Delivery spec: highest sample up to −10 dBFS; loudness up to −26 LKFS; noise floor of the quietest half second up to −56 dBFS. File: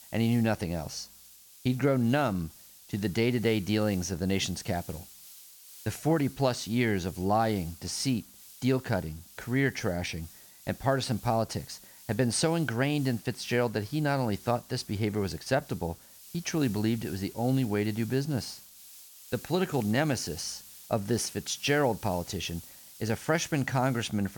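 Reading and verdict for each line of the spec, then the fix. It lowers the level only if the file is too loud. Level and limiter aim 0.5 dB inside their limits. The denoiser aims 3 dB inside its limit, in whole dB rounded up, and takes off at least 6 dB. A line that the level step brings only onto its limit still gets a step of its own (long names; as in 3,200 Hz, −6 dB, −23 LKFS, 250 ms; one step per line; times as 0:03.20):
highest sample −12.0 dBFS: in spec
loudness −30.0 LKFS: in spec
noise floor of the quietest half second −54 dBFS: out of spec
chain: broadband denoise 6 dB, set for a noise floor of −54 dBFS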